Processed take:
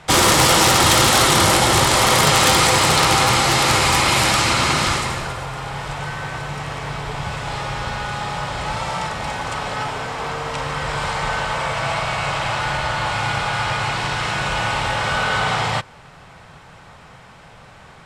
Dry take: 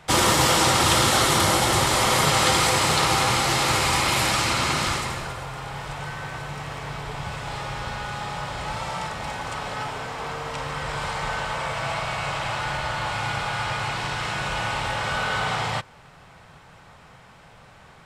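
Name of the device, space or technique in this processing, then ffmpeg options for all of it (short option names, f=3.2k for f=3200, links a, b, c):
overflowing digital effects unit: -af "aeval=exprs='(mod(3.35*val(0)+1,2)-1)/3.35':c=same,lowpass=12k,volume=5.5dB"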